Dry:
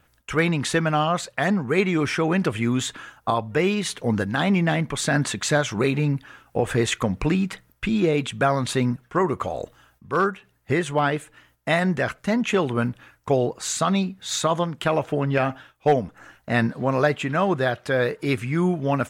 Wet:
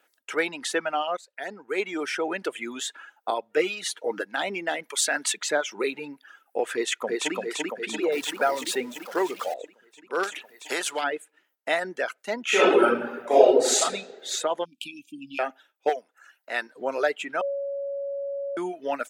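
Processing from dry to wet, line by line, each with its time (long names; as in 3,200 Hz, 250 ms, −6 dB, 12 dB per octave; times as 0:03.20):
0:01.17–0:02.01: fade in, from −15.5 dB
0:03.56–0:04.21: comb filter 6.4 ms
0:04.83–0:05.37: spectral tilt +2.5 dB per octave
0:06.73–0:07.35: delay throw 340 ms, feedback 70%, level −1 dB
0:08.12–0:09.54: converter with a step at zero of −26.5 dBFS
0:10.23–0:11.04: every bin compressed towards the loudest bin 2 to 1
0:12.44–0:13.81: thrown reverb, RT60 1.7 s, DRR −11 dB
0:14.65–0:15.39: linear-phase brick-wall band-stop 320–2,300 Hz
0:15.89–0:16.76: high-pass filter 830 Hz 6 dB per octave
0:17.41–0:18.57: beep over 559 Hz −21 dBFS
whole clip: reverb reduction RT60 1.1 s; high-pass filter 340 Hz 24 dB per octave; notch filter 1,100 Hz, Q 5.8; level −2.5 dB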